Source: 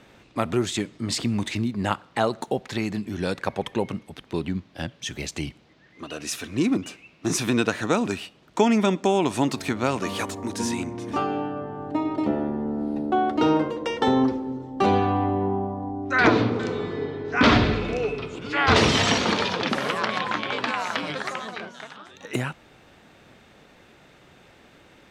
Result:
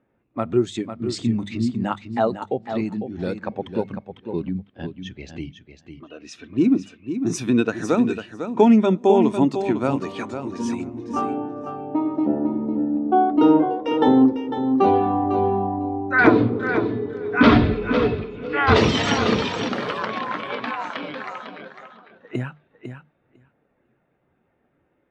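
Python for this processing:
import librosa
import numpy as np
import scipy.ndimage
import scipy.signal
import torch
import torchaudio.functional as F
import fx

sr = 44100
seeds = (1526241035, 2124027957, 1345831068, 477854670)

p1 = fx.env_lowpass(x, sr, base_hz=2000.0, full_db=-21.5)
p2 = fx.hum_notches(p1, sr, base_hz=50, count=4)
p3 = p2 + fx.echo_feedback(p2, sr, ms=501, feedback_pct=20, wet_db=-6.0, dry=0)
p4 = fx.spectral_expand(p3, sr, expansion=1.5)
y = F.gain(torch.from_numpy(p4), 3.5).numpy()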